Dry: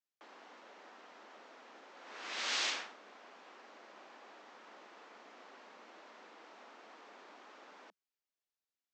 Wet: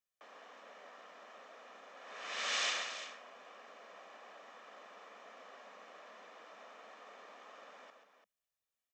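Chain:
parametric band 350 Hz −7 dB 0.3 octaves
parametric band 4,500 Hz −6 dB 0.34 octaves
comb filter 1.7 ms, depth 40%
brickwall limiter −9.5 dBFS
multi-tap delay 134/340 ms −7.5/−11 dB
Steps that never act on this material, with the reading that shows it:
brickwall limiter −9.5 dBFS: peak of its input −24.0 dBFS

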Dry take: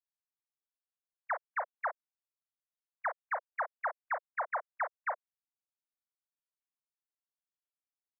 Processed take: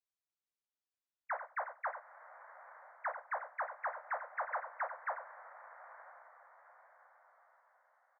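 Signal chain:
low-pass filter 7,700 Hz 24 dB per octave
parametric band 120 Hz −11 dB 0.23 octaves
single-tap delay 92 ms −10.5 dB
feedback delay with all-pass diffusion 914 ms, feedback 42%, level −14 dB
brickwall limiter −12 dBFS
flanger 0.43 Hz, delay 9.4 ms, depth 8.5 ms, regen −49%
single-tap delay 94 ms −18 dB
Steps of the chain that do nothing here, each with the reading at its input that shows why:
low-pass filter 7,700 Hz: nothing at its input above 2,400 Hz
parametric band 120 Hz: nothing at its input below 430 Hz
brickwall limiter −12 dBFS: peak of its input −25.0 dBFS

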